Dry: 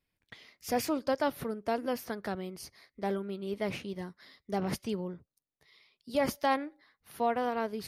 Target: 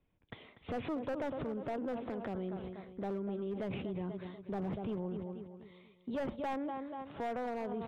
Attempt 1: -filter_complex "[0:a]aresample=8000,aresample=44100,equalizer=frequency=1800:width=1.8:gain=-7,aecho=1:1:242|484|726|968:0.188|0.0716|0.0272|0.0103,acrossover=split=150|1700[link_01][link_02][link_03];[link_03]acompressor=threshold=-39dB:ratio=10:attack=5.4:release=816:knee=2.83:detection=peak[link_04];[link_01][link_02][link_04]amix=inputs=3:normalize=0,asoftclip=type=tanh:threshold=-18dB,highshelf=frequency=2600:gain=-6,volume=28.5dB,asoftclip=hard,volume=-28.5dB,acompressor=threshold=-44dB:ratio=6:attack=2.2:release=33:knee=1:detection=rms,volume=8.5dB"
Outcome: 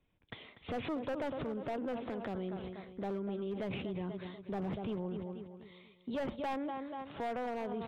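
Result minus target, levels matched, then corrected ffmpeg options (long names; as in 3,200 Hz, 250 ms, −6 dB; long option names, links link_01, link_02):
4,000 Hz band +4.5 dB
-filter_complex "[0:a]aresample=8000,aresample=44100,equalizer=frequency=1800:width=1.8:gain=-7,aecho=1:1:242|484|726|968:0.188|0.0716|0.0272|0.0103,acrossover=split=150|1700[link_01][link_02][link_03];[link_03]acompressor=threshold=-39dB:ratio=10:attack=5.4:release=816:knee=2.83:detection=peak[link_04];[link_01][link_02][link_04]amix=inputs=3:normalize=0,asoftclip=type=tanh:threshold=-18dB,highshelf=frequency=2600:gain=-15,volume=28.5dB,asoftclip=hard,volume=-28.5dB,acompressor=threshold=-44dB:ratio=6:attack=2.2:release=33:knee=1:detection=rms,volume=8.5dB"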